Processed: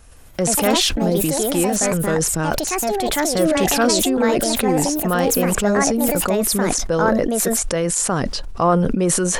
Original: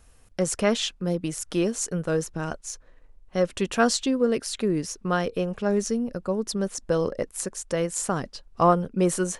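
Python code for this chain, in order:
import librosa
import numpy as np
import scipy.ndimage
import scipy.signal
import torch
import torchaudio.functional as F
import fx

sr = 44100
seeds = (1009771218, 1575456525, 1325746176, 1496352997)

p1 = fx.over_compress(x, sr, threshold_db=-28.0, ratio=-1.0)
p2 = x + (p1 * librosa.db_to_amplitude(-1.5))
p3 = fx.echo_pitch(p2, sr, ms=166, semitones=4, count=2, db_per_echo=-3.0)
p4 = fx.sustainer(p3, sr, db_per_s=24.0)
y = p4 * librosa.db_to_amplitude(1.0)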